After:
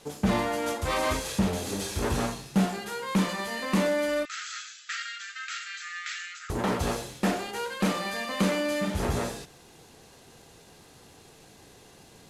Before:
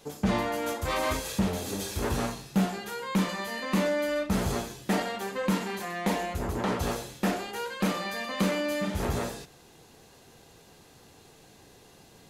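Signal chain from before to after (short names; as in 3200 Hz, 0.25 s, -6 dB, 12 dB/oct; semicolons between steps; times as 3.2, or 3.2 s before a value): CVSD 64 kbps; 4.25–6.5 brick-wall FIR band-pass 1200–7900 Hz; gain +1.5 dB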